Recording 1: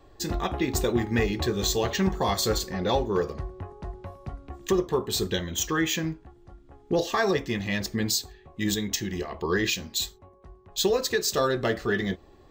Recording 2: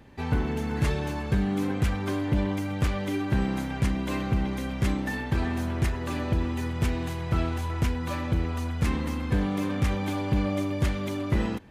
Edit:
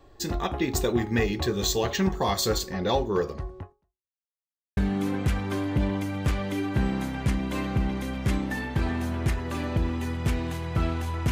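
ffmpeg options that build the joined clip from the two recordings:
ffmpeg -i cue0.wav -i cue1.wav -filter_complex "[0:a]apad=whole_dur=11.31,atrim=end=11.31,asplit=2[link_01][link_02];[link_01]atrim=end=4.24,asetpts=PTS-STARTPTS,afade=type=out:start_time=3.61:duration=0.63:curve=exp[link_03];[link_02]atrim=start=4.24:end=4.77,asetpts=PTS-STARTPTS,volume=0[link_04];[1:a]atrim=start=1.33:end=7.87,asetpts=PTS-STARTPTS,afade=type=in:duration=0.004:curve=hsin[link_05];[link_03][link_04][link_05]concat=n=3:v=0:a=1" out.wav

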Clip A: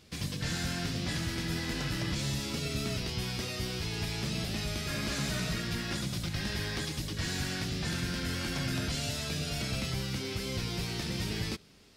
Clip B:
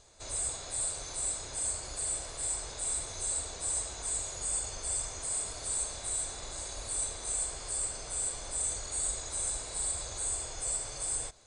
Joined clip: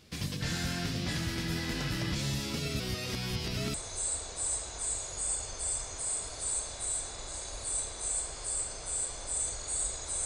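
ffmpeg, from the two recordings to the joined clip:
ffmpeg -i cue0.wav -i cue1.wav -filter_complex "[0:a]apad=whole_dur=10.25,atrim=end=10.25,asplit=2[link_01][link_02];[link_01]atrim=end=2.802[link_03];[link_02]atrim=start=2.798:end=3.742,asetpts=PTS-STARTPTS,areverse[link_04];[1:a]atrim=start=2.978:end=9.49[link_05];[link_03][link_04]acrossfade=duration=0.004:curve1=hsin:curve2=hsin[link_06];[link_06][link_05]acrossfade=duration=0.004:curve1=hsin:curve2=hsin" out.wav

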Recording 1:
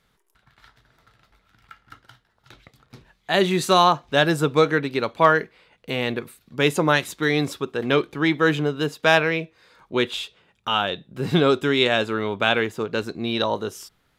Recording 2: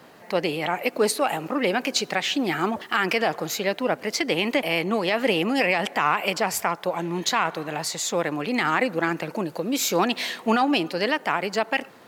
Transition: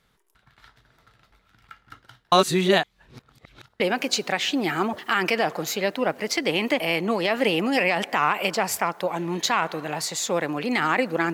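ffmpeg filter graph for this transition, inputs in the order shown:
ffmpeg -i cue0.wav -i cue1.wav -filter_complex "[0:a]apad=whole_dur=11.33,atrim=end=11.33,asplit=2[link_01][link_02];[link_01]atrim=end=2.322[link_03];[link_02]atrim=start=2.318:end=3.802,asetpts=PTS-STARTPTS,areverse[link_04];[1:a]atrim=start=1.628:end=9.16[link_05];[link_03][link_04]acrossfade=duration=0.004:curve1=hsin:curve2=hsin[link_06];[link_06][link_05]acrossfade=duration=0.004:curve1=hsin:curve2=hsin" out.wav

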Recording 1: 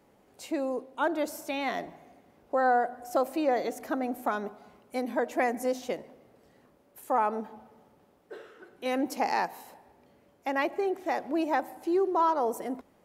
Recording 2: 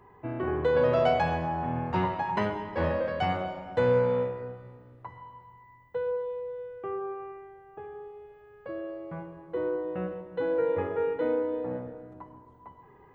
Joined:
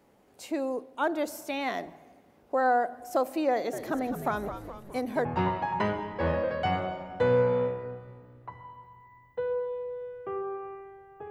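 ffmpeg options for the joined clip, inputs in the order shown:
ffmpeg -i cue0.wav -i cue1.wav -filter_complex "[0:a]asettb=1/sr,asplit=3[link_01][link_02][link_03];[link_01]atrim=end=3.524[link_04];[link_02]atrim=start=3.52:end=5.25,asetpts=PTS-STARTPTS,afade=type=in:duration=0.004:curve=qsin,afade=type=out:start_time=1.726:duration=0.004:curve=qsin,asplit=7[link_05][link_06][link_07][link_08][link_09][link_10][link_11];[link_06]adelay=209,afreqshift=-100,volume=-9dB[link_12];[link_07]adelay=418,afreqshift=-200,volume=-14.2dB[link_13];[link_08]adelay=627,afreqshift=-300,volume=-19.4dB[link_14];[link_09]adelay=836,afreqshift=-400,volume=-24.6dB[link_15];[link_10]adelay=1045,afreqshift=-500,volume=-29.8dB[link_16];[link_11]adelay=1254,afreqshift=-600,volume=-35dB[link_17];[link_05][link_12][link_13][link_14][link_15][link_16][link_17]amix=inputs=7:normalize=0,atrim=end_sample=76293[link_18];[link_03]atrim=start=5.246[link_19];[link_04][link_18]acrossfade=duration=0.004:curve1=hsin:curve2=qsin[link_20];[link_20][link_19]acrossfade=duration=0.004:curve1=qsin:curve2=hsin,apad=whole_dur=11.3,atrim=end=11.3,atrim=end=5.252[link_21];[1:a]atrim=start=1.818:end=7.87[link_22];[link_21][link_22]acrossfade=duration=0.004:curve1=hsin:curve2=hsin" out.wav

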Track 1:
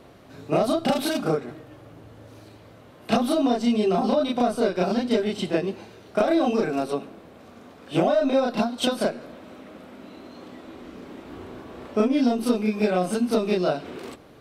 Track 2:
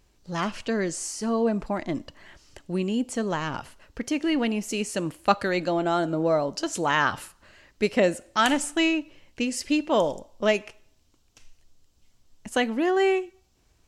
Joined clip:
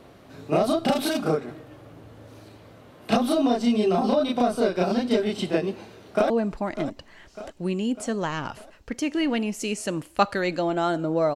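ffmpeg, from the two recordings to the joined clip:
ffmpeg -i cue0.wav -i cue1.wav -filter_complex "[0:a]apad=whole_dur=11.35,atrim=end=11.35,atrim=end=6.302[link_01];[1:a]atrim=start=1.388:end=6.44[link_02];[link_01][link_02]acrossfade=duration=0.004:curve1=hsin:curve2=hsin,asplit=2[link_03][link_04];[link_04]afade=type=in:start_time=5.76:duration=0.01,afade=type=out:start_time=6.3:duration=0.01,aecho=0:1:600|1200|1800|2400|3000|3600|4200:0.237137|0.142282|0.0853695|0.0512217|0.030733|0.0184398|0.0110639[link_05];[link_03][link_05]amix=inputs=2:normalize=0" out.wav

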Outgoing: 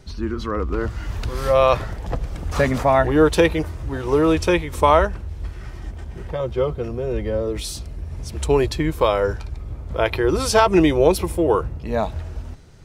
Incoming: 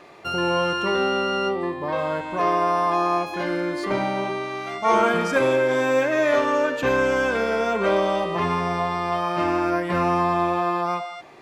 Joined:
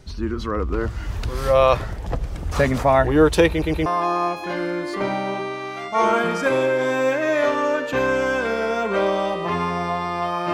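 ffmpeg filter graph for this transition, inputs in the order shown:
ffmpeg -i cue0.wav -i cue1.wav -filter_complex "[0:a]apad=whole_dur=10.53,atrim=end=10.53,asplit=3[link_01][link_02][link_03];[link_01]atrim=end=3.622[link_04];[link_02]atrim=start=3.498:end=3.622[link_05];[link_03]atrim=start=3.498:end=3.622[link_06];[1:a]atrim=start=2.758:end=9.43[link_07];[link_04][link_05]acrossfade=duration=0.004:curve1=hsin:curve2=hsin[link_08];[link_08][link_06]acrossfade=duration=0.004:curve1=hsin:curve2=hsin[link_09];[link_09][link_07]acrossfade=duration=0.004:curve1=hsin:curve2=hsin" out.wav

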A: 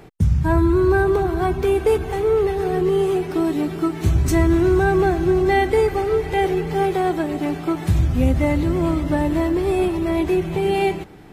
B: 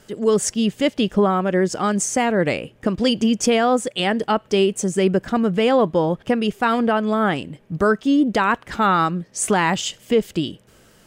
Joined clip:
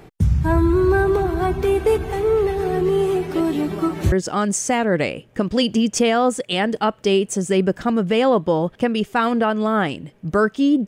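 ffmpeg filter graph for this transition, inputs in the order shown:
ffmpeg -i cue0.wav -i cue1.wav -filter_complex "[1:a]asplit=2[link_01][link_02];[0:a]apad=whole_dur=10.87,atrim=end=10.87,atrim=end=4.122[link_03];[link_02]atrim=start=1.588:end=8.34[link_04];[link_01]atrim=start=0.75:end=1.59,asetpts=PTS-STARTPTS,volume=-16dB,afade=type=in:duration=0.004:curve=hsin,afade=type=out:start_time=0.836:duration=0.004:curve=hsin,adelay=3280[link_05];[link_03][link_04]acrossfade=duration=0.004:curve1=hsin:curve2=hsin[link_06];[link_06][link_05]amix=inputs=2:normalize=0" out.wav

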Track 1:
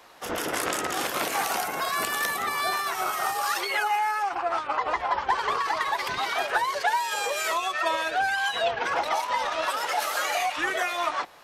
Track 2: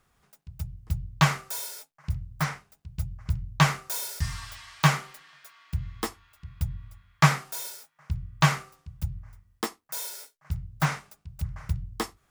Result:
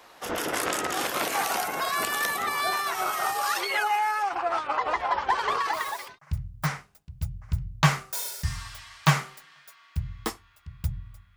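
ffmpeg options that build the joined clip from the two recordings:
ffmpeg -i cue0.wav -i cue1.wav -filter_complex "[0:a]apad=whole_dur=11.36,atrim=end=11.36,atrim=end=6.19,asetpts=PTS-STARTPTS[link_01];[1:a]atrim=start=1.42:end=7.13,asetpts=PTS-STARTPTS[link_02];[link_01][link_02]acrossfade=duration=0.54:curve1=tri:curve2=tri" out.wav

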